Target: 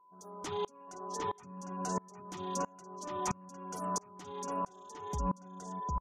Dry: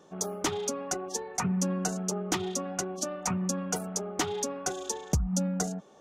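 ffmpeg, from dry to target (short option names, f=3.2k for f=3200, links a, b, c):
-filter_complex "[0:a]aeval=exprs='val(0)+0.0158*sin(2*PI*1000*n/s)':c=same,alimiter=level_in=1dB:limit=-24dB:level=0:latency=1:release=56,volume=-1dB,asplit=2[a][b];[b]adelay=755,lowpass=f=4.2k:p=1,volume=-4dB,asplit=2[c][d];[d]adelay=755,lowpass=f=4.2k:p=1,volume=0.16,asplit=2[e][f];[f]adelay=755,lowpass=f=4.2k:p=1,volume=0.16[g];[c][e][g]amix=inputs=3:normalize=0[h];[a][h]amix=inputs=2:normalize=0,afftfilt=real='re*gte(hypot(re,im),0.00355)':imag='im*gte(hypot(re,im),0.00355)':win_size=1024:overlap=0.75,aeval=exprs='val(0)*pow(10,-28*if(lt(mod(-1.5*n/s,1),2*abs(-1.5)/1000),1-mod(-1.5*n/s,1)/(2*abs(-1.5)/1000),(mod(-1.5*n/s,1)-2*abs(-1.5)/1000)/(1-2*abs(-1.5)/1000))/20)':c=same,volume=1dB"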